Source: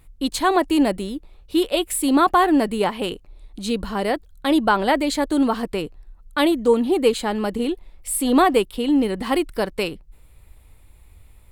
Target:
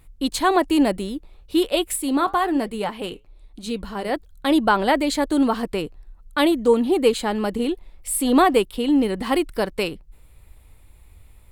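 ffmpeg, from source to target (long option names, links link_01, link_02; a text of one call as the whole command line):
ffmpeg -i in.wav -filter_complex "[0:a]asplit=3[link_01][link_02][link_03];[link_01]afade=type=out:start_time=1.95:duration=0.02[link_04];[link_02]flanger=delay=2.3:depth=6.4:regen=-76:speed=1.1:shape=triangular,afade=type=in:start_time=1.95:duration=0.02,afade=type=out:start_time=4.11:duration=0.02[link_05];[link_03]afade=type=in:start_time=4.11:duration=0.02[link_06];[link_04][link_05][link_06]amix=inputs=3:normalize=0" out.wav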